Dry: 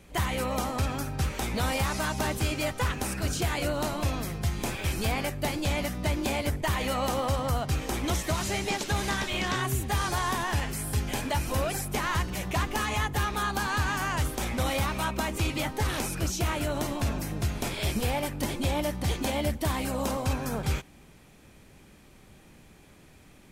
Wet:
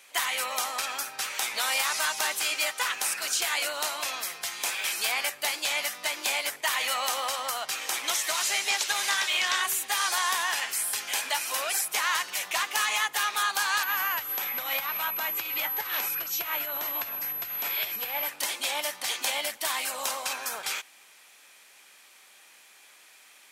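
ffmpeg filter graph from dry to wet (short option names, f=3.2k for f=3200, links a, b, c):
-filter_complex "[0:a]asettb=1/sr,asplit=3[a][b][c];[a]atrim=end=13.834[d];[b]atrim=start=13.83:end=18.29,asetpts=PTS-STARTPTS,afade=t=in:d=0.004:c=qsin,afade=t=out:st=4.456:d=0.004:c=qsin,bass=f=250:g=9,treble=f=4k:g=-10,aeval=exprs='val(0)+0.0158*sin(2*PI*12000*n/s)':c=same,acompressor=threshold=-23dB:ratio=5:attack=3.2:release=140:knee=1:detection=peak[e];[c]atrim=start=18.286[f];[d][e]acrossfade=d=0.004:c1=hsin:c2=qsin[g];[g][f]acrossfade=d=0.004:c1=qsin:c2=hsin,highpass=630,tiltshelf=f=850:g=-8"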